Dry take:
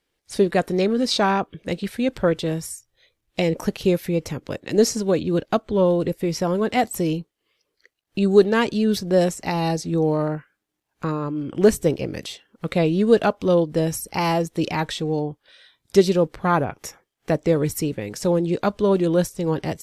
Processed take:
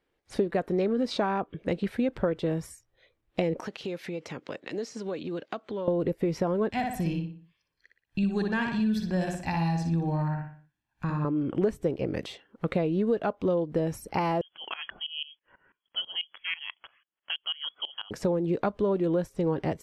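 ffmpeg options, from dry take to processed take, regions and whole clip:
-filter_complex "[0:a]asettb=1/sr,asplit=3[a][b][c];[a]atrim=end=3.604[d];[b]atrim=start=3.6:end=5.88,asetpts=PTS-STARTPTS,afade=t=in:d=0.004:c=qsin,afade=t=out:st=2.276:d=0.004:c=qsin,highpass=160,lowpass=7.1k,tiltshelf=f=1.5k:g=-6.5,acompressor=threshold=-31dB:ratio=5:attack=3.2:release=140:knee=1:detection=peak[e];[c]atrim=start=5.876[f];[d][e]acrossfade=d=0.004:c1=hsin:c2=qsin[g];[g][f]acrossfade=d=0.004:c1=qsin:c2=hsin,asettb=1/sr,asplit=3[h][i][j];[h]atrim=end=6.704[k];[i]atrim=start=6.7:end=11.25,asetpts=PTS-STARTPTS,afade=t=in:d=0.004:c=qsin,afade=t=out:st=4.546:d=0.004:c=qsin,equalizer=f=540:t=o:w=2.1:g=-13.5,aecho=1:1:1.2:0.52,atrim=end_sample=200655,asplit=2[l][m];[m]adelay=60,lowpass=f=3.7k:p=1,volume=-3.5dB,asplit=2[n][o];[o]adelay=60,lowpass=f=3.7k:p=1,volume=0.43,asplit=2[p][q];[q]adelay=60,lowpass=f=3.7k:p=1,volume=0.43,asplit=2[r][s];[s]adelay=60,lowpass=f=3.7k:p=1,volume=0.43,asplit=2[t][u];[u]adelay=60,lowpass=f=3.7k:p=1,volume=0.43[v];[l][n][p][r][t][v]amix=inputs=6:normalize=0,atrim=end_sample=200655[w];[j]atrim=start=11.246[x];[k][w]acrossfade=d=0.004:c1=hsin:c2=qsin[y];[y][x]acrossfade=d=0.004:c1=qsin:c2=hsin,asettb=1/sr,asplit=3[z][aa][ab];[z]atrim=end=14.414[ac];[aa]atrim=start=14.41:end=18.11,asetpts=PTS-STARTPTS,afade=t=in:d=0.004:c=qsin,afade=t=out:st=3.696:d=0.004:c=qsin,lowpass=f=2.9k:t=q:w=0.5098,lowpass=f=2.9k:t=q:w=0.6013,lowpass=f=2.9k:t=q:w=0.9,lowpass=f=2.9k:t=q:w=2.563,afreqshift=-3400,aeval=exprs='val(0)*pow(10,-20*if(lt(mod(-6.1*n/s,1),2*abs(-6.1)/1000),1-mod(-6.1*n/s,1)/(2*abs(-6.1)/1000),(mod(-6.1*n/s,1)-2*abs(-6.1)/1000)/(1-2*abs(-6.1)/1000))/20)':c=same[ad];[ab]atrim=start=18.106[ae];[ac][ad]acrossfade=d=0.004:c1=hsin:c2=qsin[af];[af][ae]acrossfade=d=0.004:c1=qsin:c2=hsin,bass=f=250:g=-3,treble=f=4k:g=-7,acompressor=threshold=-25dB:ratio=6,highshelf=f=2.4k:g=-10,volume=2dB"

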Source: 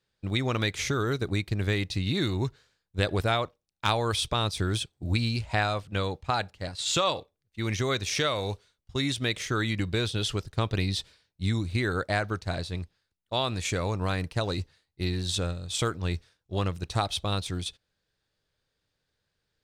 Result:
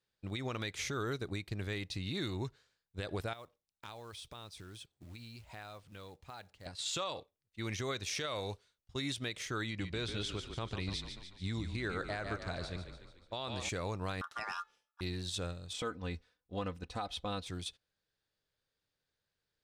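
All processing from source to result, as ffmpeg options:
-filter_complex "[0:a]asettb=1/sr,asplit=3[a][b][c];[a]atrim=end=3.334[d];[b]atrim=start=3.33:end=6.66,asetpts=PTS-STARTPTS,afade=t=in:d=0.004:c=qsin,afade=t=out:st=3.326:d=0.004:c=qsin,acrusher=bits=5:mode=log:mix=0:aa=0.000001,acompressor=threshold=-44dB:ratio=2.5:attack=3.2:release=140:knee=1:detection=peak[e];[c]atrim=start=6.656[f];[d][e]acrossfade=d=0.004:c1=hsin:c2=qsin[g];[g][f]acrossfade=d=0.004:c1=qsin:c2=hsin,asettb=1/sr,asplit=3[h][i][j];[h]atrim=end=9.664[k];[i]atrim=start=9.66:end=13.69,asetpts=PTS-STARTPTS,afade=t=in:d=0.004:c=qsin,afade=t=out:st=4.026:d=0.004:c=qsin,lowpass=8.3k,asplit=7[l][m][n][o][p][q][r];[m]adelay=145,afreqshift=-31,volume=-9dB[s];[n]adelay=290,afreqshift=-62,volume=-14.2dB[t];[o]adelay=435,afreqshift=-93,volume=-19.4dB[u];[p]adelay=580,afreqshift=-124,volume=-24.6dB[v];[q]adelay=725,afreqshift=-155,volume=-29.8dB[w];[r]adelay=870,afreqshift=-186,volume=-35dB[x];[l][s][t][u][v][w][x]amix=inputs=7:normalize=0,atrim=end_sample=177723[y];[j]atrim=start=13.686[z];[k][y]acrossfade=d=0.004:c1=hsin:c2=qsin[aa];[aa][z]acrossfade=d=0.004:c1=qsin:c2=hsin,asettb=1/sr,asplit=3[ab][ac][ad];[ab]atrim=end=14.214[ae];[ac]atrim=start=14.21:end=15.01,asetpts=PTS-STARTPTS,afade=t=in:d=0.004:c=qsin,afade=t=out:st=0.796:d=0.004:c=qsin,bandreject=f=422:t=h:w=4,bandreject=f=844:t=h:w=4,bandreject=f=1.266k:t=h:w=4,bandreject=f=1.688k:t=h:w=4,bandreject=f=2.11k:t=h:w=4,bandreject=f=2.532k:t=h:w=4,bandreject=f=2.954k:t=h:w=4,aeval=exprs='val(0)*sin(2*PI*1300*n/s)':c=same[af];[ad]atrim=start=15.006[ag];[ae][af]acrossfade=d=0.004:c1=hsin:c2=qsin[ah];[ah][ag]acrossfade=d=0.004:c1=qsin:c2=hsin,asettb=1/sr,asplit=3[ai][aj][ak];[ai]atrim=end=15.734[al];[aj]atrim=start=15.73:end=17.47,asetpts=PTS-STARTPTS,afade=t=in:d=0.004:c=qsin,afade=t=out:st=1.736:d=0.004:c=qsin,highshelf=f=4.1k:g=-12,aecho=1:1:4:0.67,atrim=end_sample=76734[am];[ak]atrim=start=17.466[an];[al][am]acrossfade=d=0.004:c1=hsin:c2=qsin[ao];[ao][an]acrossfade=d=0.004:c1=qsin:c2=hsin,lowshelf=f=220:g=-4,alimiter=limit=-20dB:level=0:latency=1:release=88,volume=-7dB"

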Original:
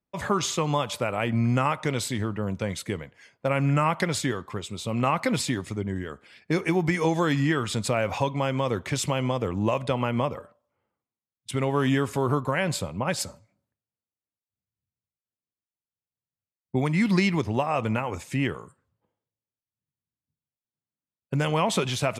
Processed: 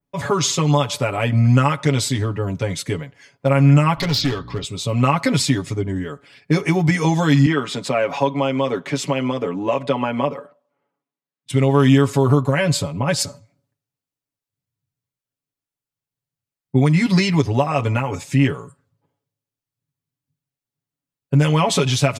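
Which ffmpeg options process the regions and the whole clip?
-filter_complex "[0:a]asettb=1/sr,asplit=3[a][b][c];[a]atrim=end=3.974[d];[b]atrim=start=3.97:end=4.64,asetpts=PTS-STARTPTS,afade=t=in:d=0.004:c=qsin,afade=t=out:st=0.666:d=0.004:c=qsin,highshelf=f=6.4k:t=q:w=3:g=-12.5,aeval=exprs='val(0)+0.00794*(sin(2*PI*60*n/s)+sin(2*PI*2*60*n/s)/2+sin(2*PI*3*60*n/s)/3+sin(2*PI*4*60*n/s)/4+sin(2*PI*5*60*n/s)/5)':c=same,asoftclip=type=hard:threshold=-24dB[e];[c]atrim=start=4.636[f];[d][e]acrossfade=d=0.004:c1=hsin:c2=qsin[g];[g][f]acrossfade=d=0.004:c1=qsin:c2=hsin,asettb=1/sr,asplit=3[h][i][j];[h]atrim=end=7.464[k];[i]atrim=start=7.46:end=11.5,asetpts=PTS-STARTPTS,afade=t=in:d=0.004:c=qsin,afade=t=out:st=4.036:d=0.004:c=qsin,highpass=f=170:w=0.5412,highpass=f=170:w=1.3066,bass=f=250:g=-2,treble=f=4k:g=-9[l];[j]atrim=start=11.496[m];[k][l]acrossfade=d=0.004:c1=hsin:c2=qsin[n];[n][m]acrossfade=d=0.004:c1=qsin:c2=hsin,lowshelf=f=360:g=5.5,aecho=1:1:7.1:0.89,adynamicequalizer=threshold=0.00794:dfrequency=5300:dqfactor=0.89:tfrequency=5300:tqfactor=0.89:attack=5:release=100:ratio=0.375:range=3:mode=boostabove:tftype=bell,volume=1.5dB"

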